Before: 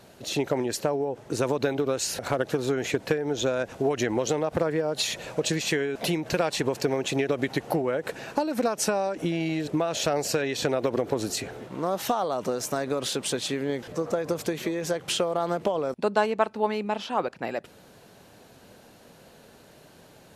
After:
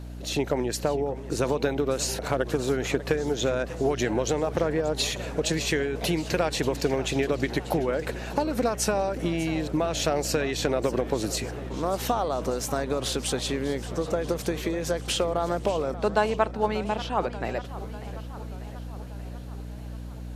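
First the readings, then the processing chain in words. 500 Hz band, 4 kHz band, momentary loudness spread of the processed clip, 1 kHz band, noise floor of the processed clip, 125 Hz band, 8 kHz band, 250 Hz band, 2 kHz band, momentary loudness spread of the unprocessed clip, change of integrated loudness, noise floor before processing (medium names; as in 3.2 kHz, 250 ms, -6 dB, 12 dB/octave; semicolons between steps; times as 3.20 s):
0.0 dB, 0.0 dB, 12 LU, 0.0 dB, -37 dBFS, +3.0 dB, 0.0 dB, +0.5 dB, 0.0 dB, 4 LU, +0.5 dB, -53 dBFS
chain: hum 60 Hz, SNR 10 dB; modulated delay 589 ms, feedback 64%, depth 200 cents, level -15.5 dB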